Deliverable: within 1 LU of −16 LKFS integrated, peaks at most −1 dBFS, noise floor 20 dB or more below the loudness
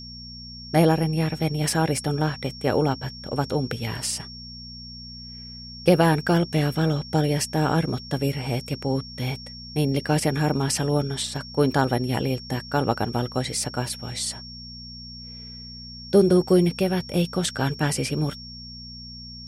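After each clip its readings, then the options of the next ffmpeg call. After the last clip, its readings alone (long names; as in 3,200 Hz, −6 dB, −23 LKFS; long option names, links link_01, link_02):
mains hum 60 Hz; hum harmonics up to 240 Hz; level of the hum −40 dBFS; interfering tone 5,500 Hz; level of the tone −39 dBFS; integrated loudness −24.0 LKFS; sample peak −5.5 dBFS; target loudness −16.0 LKFS
→ -af "bandreject=frequency=60:width_type=h:width=4,bandreject=frequency=120:width_type=h:width=4,bandreject=frequency=180:width_type=h:width=4,bandreject=frequency=240:width_type=h:width=4"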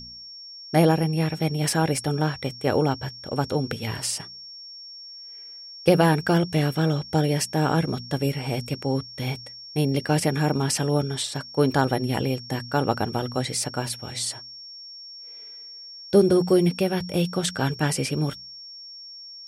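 mains hum none found; interfering tone 5,500 Hz; level of the tone −39 dBFS
→ -af "bandreject=frequency=5500:width=30"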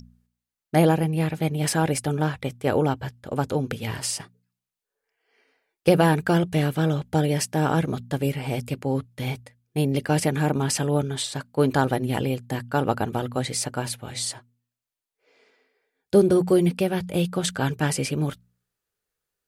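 interfering tone none found; integrated loudness −24.5 LKFS; sample peak −5.5 dBFS; target loudness −16.0 LKFS
→ -af "volume=8.5dB,alimiter=limit=-1dB:level=0:latency=1"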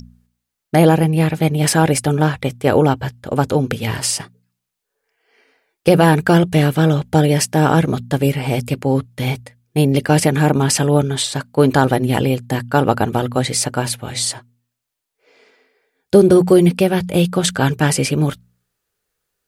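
integrated loudness −16.5 LKFS; sample peak −1.0 dBFS; background noise floor −80 dBFS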